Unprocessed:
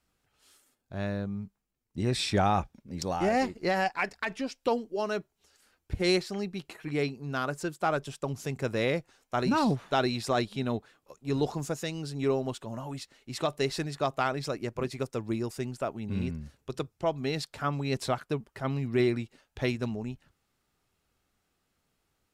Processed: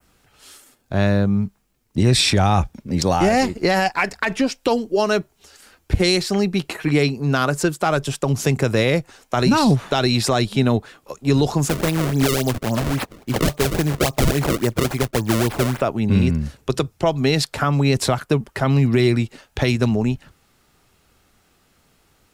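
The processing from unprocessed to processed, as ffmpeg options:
-filter_complex "[0:a]asettb=1/sr,asplit=3[a][b][c];[a]atrim=end=11.694[d];[b]atrim=start=11.69:end=15.81,asetpts=PTS-STARTPTS,afade=t=in:d=0.004:c=qsin,afade=t=out:st=4.116:d=0.004:c=qsin,acrusher=samples=31:mix=1:aa=0.000001:lfo=1:lforange=49.6:lforate=3.6[e];[c]atrim=start=15.806[f];[d][e]acrossfade=d=0.004:c1=hsin:c2=qsin[g];[g][f]acrossfade=d=0.004:c1=qsin:c2=hsin,adynamicequalizer=threshold=0.00355:dfrequency=4200:dqfactor=0.86:tfrequency=4200:tqfactor=0.86:attack=5:release=100:ratio=0.375:range=2:mode=cutabove:tftype=bell,acrossover=split=140|3000[h][i][j];[i]acompressor=threshold=-33dB:ratio=3[k];[h][k][j]amix=inputs=3:normalize=0,alimiter=level_in=22.5dB:limit=-1dB:release=50:level=0:latency=1,volume=-5.5dB"

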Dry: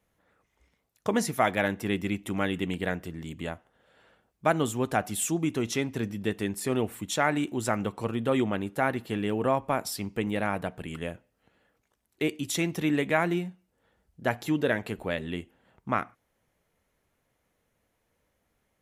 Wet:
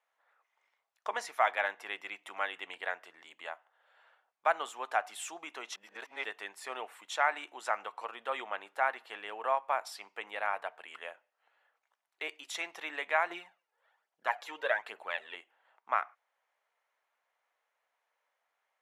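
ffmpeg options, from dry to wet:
-filter_complex "[0:a]asettb=1/sr,asplit=3[a][b][c];[a]atrim=end=13.304[d];[b]atrim=start=13.3:end=15.35,asetpts=PTS-STARTPTS,afade=t=in:d=0.004:c=qsin,afade=t=out:st=2.046:d=0.004:c=qsin,aphaser=in_gain=1:out_gain=1:delay=2.5:decay=0.53:speed=1.2:type=triangular[e];[c]atrim=start=15.346[f];[d][e]acrossfade=d=0.004:c1=hsin:c2=qsin[g];[g][f]acrossfade=d=0.004:c1=qsin:c2=hsin,asplit=3[h][i][j];[h]atrim=end=5.762[k];[i]atrim=start=5.758:end=6.242,asetpts=PTS-STARTPTS,areverse[l];[j]atrim=start=6.238[m];[k][l]acrossfade=d=0.004:c1=hsin:c2=hsin[n];[n][m]acrossfade=d=0.004:c1=hsin:c2=hsin,highpass=f=780:w=0.5412,highpass=f=780:w=1.3066,aemphasis=mode=reproduction:type=riaa"

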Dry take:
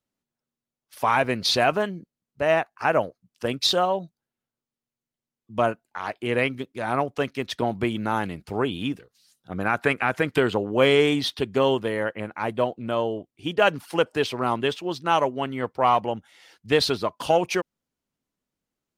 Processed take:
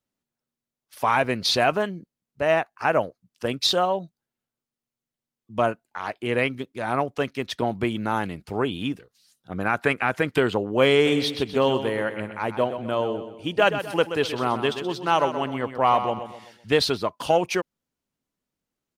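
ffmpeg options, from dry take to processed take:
-filter_complex "[0:a]asplit=3[a][b][c];[a]afade=t=out:st=11.05:d=0.02[d];[b]aecho=1:1:127|254|381|508:0.316|0.13|0.0532|0.0218,afade=t=in:st=11.05:d=0.02,afade=t=out:st=16.77:d=0.02[e];[c]afade=t=in:st=16.77:d=0.02[f];[d][e][f]amix=inputs=3:normalize=0"

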